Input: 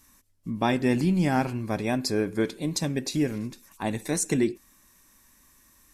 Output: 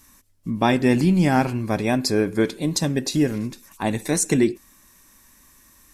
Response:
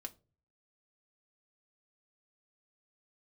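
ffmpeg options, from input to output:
-filter_complex "[0:a]asettb=1/sr,asplit=3[link_01][link_02][link_03];[link_01]atrim=end=2.654[link_04];[link_02]atrim=start=2.65:end=3.34,asetpts=PTS-STARTPTS,afade=type=in:duration=0.004:curve=qsin,afade=type=out:start_time=0.686:duration=0.004:curve=qsin,bandreject=frequency=2300:width=9[link_05];[link_03]atrim=start=3.336[link_06];[link_04][link_05]acrossfade=duration=0.004:curve1=hsin:curve2=qsin[link_07];[link_07][link_06]acrossfade=duration=0.004:curve1=qsin:curve2=hsin,volume=5.5dB"

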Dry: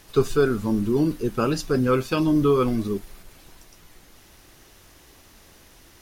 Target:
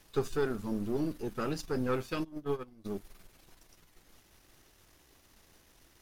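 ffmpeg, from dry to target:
ffmpeg -i in.wav -filter_complex "[0:a]aeval=exprs='if(lt(val(0),0),0.447*val(0),val(0))':channel_layout=same,asplit=3[link_01][link_02][link_03];[link_01]afade=type=out:start_time=2.23:duration=0.02[link_04];[link_02]agate=range=-22dB:threshold=-18dB:ratio=16:detection=peak,afade=type=in:start_time=2.23:duration=0.02,afade=type=out:start_time=2.84:duration=0.02[link_05];[link_03]afade=type=in:start_time=2.84:duration=0.02[link_06];[link_04][link_05][link_06]amix=inputs=3:normalize=0,volume=-8.5dB" out.wav

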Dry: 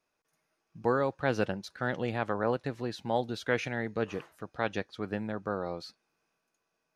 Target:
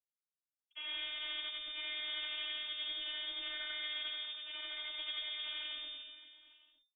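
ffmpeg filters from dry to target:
ffmpeg -i in.wav -af "afftfilt=real='re':imag='-im':win_size=8192:overlap=0.75,bandreject=frequency=50:width_type=h:width=6,bandreject=frequency=100:width_type=h:width=6,bandreject=frequency=150:width_type=h:width=6,bandreject=frequency=200:width_type=h:width=6,bandreject=frequency=250:width_type=h:width=6,agate=range=-45dB:threshold=-49dB:ratio=16:detection=peak,alimiter=limit=-23.5dB:level=0:latency=1:release=350,asoftclip=type=tanh:threshold=-34dB,aeval=exprs='0.02*(cos(1*acos(clip(val(0)/0.02,-1,1)))-cos(1*PI/2))+0.000562*(cos(2*acos(clip(val(0)/0.02,-1,1)))-cos(2*PI/2))+0.00447*(cos(6*acos(clip(val(0)/0.02,-1,1)))-cos(6*PI/2))+0.00631*(cos(8*acos(clip(val(0)/0.02,-1,1)))-cos(8*PI/2))':channel_layout=same,afftfilt=real='hypot(re,im)*cos(PI*b)':imag='0':win_size=512:overlap=0.75,asetrate=38170,aresample=44100,atempo=1.15535,aecho=1:1:100|230|399|618.7|904.3:0.631|0.398|0.251|0.158|0.1,lowpass=frequency=3100:width_type=q:width=0.5098,lowpass=frequency=3100:width_type=q:width=0.6013,lowpass=frequency=3100:width_type=q:width=0.9,lowpass=frequency=3100:width_type=q:width=2.563,afreqshift=-3600" out.wav

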